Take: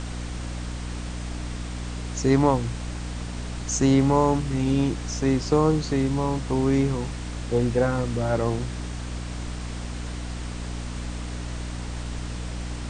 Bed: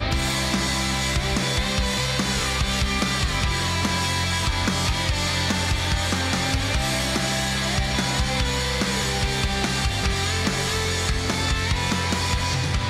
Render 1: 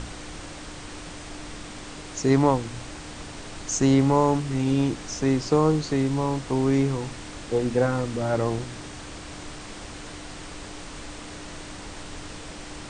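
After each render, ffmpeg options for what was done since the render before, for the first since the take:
-af "bandreject=f=60:t=h:w=4,bandreject=f=120:t=h:w=4,bandreject=f=180:t=h:w=4,bandreject=f=240:t=h:w=4"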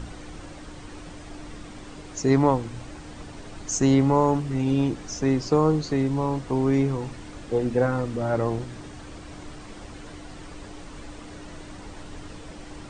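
-af "afftdn=nr=8:nf=-40"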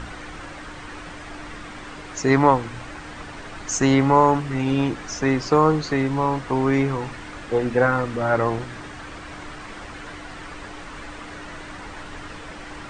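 -af "equalizer=f=1.6k:t=o:w=2.2:g=11.5"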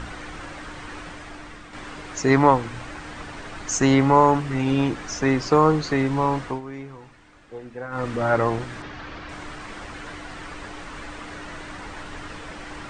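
-filter_complex "[0:a]asettb=1/sr,asplit=3[a][b][c];[a]atrim=end=8.824[d];[b]atrim=start=8.82:end=9.29,asetpts=PTS-STARTPTS,afade=t=in:d=0.004:c=qsin,afade=t=out:st=0.466:d=0.004:c=qsin,lowpass=f=5.4k:w=0.5412,lowpass=f=5.4k:w=1.3066[e];[c]atrim=start=9.286[f];[d][e]acrossfade=d=0.004:c1=hsin:c2=qsin[g];[g][f]acrossfade=d=0.004:c1=qsin:c2=hsin,asplit=4[h][i][j][k];[h]atrim=end=1.73,asetpts=PTS-STARTPTS,afade=t=out:st=0.99:d=0.74:silence=0.446684[l];[i]atrim=start=1.73:end=6.61,asetpts=PTS-STARTPTS,afade=t=in:d=0.004:c=hsin:silence=0.446684,afade=t=out:st=4.71:d=0.17:silence=0.158489[m];[j]atrim=start=6.61:end=7.9,asetpts=PTS-STARTPTS,volume=-16dB[n];[k]atrim=start=7.9,asetpts=PTS-STARTPTS,afade=t=in:d=0.17:silence=0.158489[o];[l][m][n][o]concat=n=4:v=0:a=1"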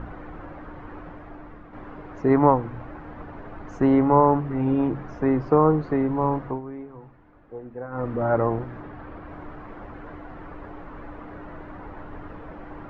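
-af "lowpass=1k,bandreject=f=68.21:t=h:w=4,bandreject=f=136.42:t=h:w=4,bandreject=f=204.63:t=h:w=4"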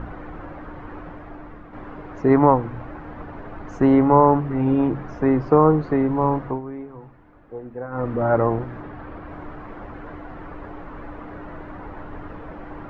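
-af "volume=3dB,alimiter=limit=-2dB:level=0:latency=1"

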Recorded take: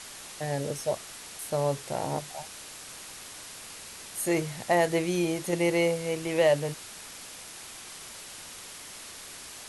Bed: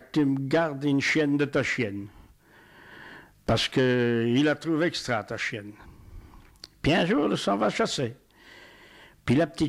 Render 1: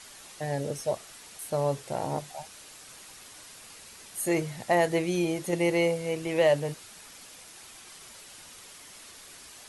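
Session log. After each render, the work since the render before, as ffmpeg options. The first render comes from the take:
-af "afftdn=nr=6:nf=-44"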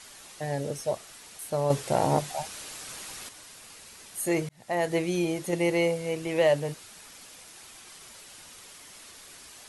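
-filter_complex "[0:a]asettb=1/sr,asplit=3[a][b][c];[a]atrim=end=1.704[d];[b]atrim=start=1.7:end=3.29,asetpts=PTS-STARTPTS,afade=t=in:d=0.004:c=qsin,afade=t=out:st=1.586:d=0.004:c=qsin,acontrast=89[e];[c]atrim=start=3.286[f];[d][e]acrossfade=d=0.004:c1=hsin:c2=qsin[g];[g][f]acrossfade=d=0.004:c1=qsin:c2=hsin,asplit=2[h][i];[h]atrim=end=4.49,asetpts=PTS-STARTPTS,afade=t=out:st=4.486:d=0.004:c=hsin[j];[i]atrim=start=4.49,asetpts=PTS-STARTPTS,afade=t=in:d=0.47[k];[j][k]concat=n=2:v=0:a=1"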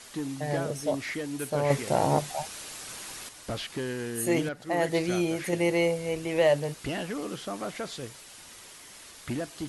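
-filter_complex "[1:a]volume=-10.5dB[a];[0:a][a]amix=inputs=2:normalize=0"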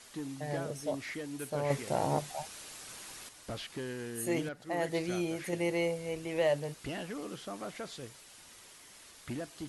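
-af "volume=-6.5dB"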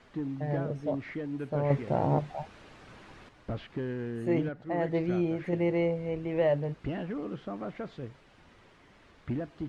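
-af "lowpass=2.2k,lowshelf=f=380:g=9"

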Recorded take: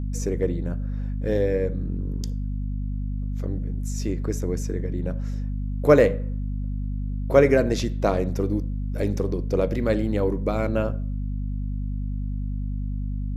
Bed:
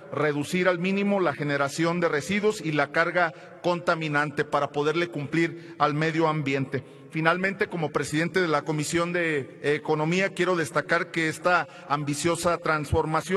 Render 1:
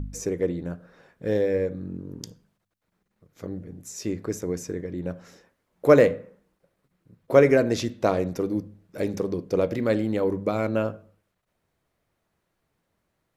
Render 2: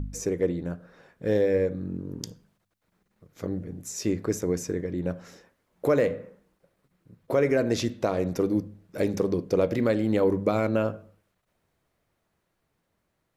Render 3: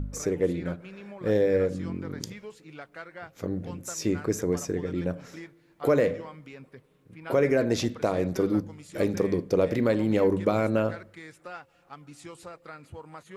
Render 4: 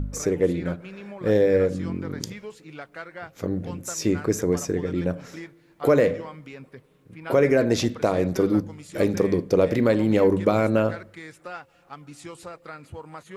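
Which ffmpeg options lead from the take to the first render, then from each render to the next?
-af "bandreject=f=50:t=h:w=4,bandreject=f=100:t=h:w=4,bandreject=f=150:t=h:w=4,bandreject=f=200:t=h:w=4,bandreject=f=250:t=h:w=4"
-af "dynaudnorm=f=230:g=21:m=5dB,alimiter=limit=-12.5dB:level=0:latency=1:release=236"
-filter_complex "[1:a]volume=-19.5dB[a];[0:a][a]amix=inputs=2:normalize=0"
-af "volume=4dB"

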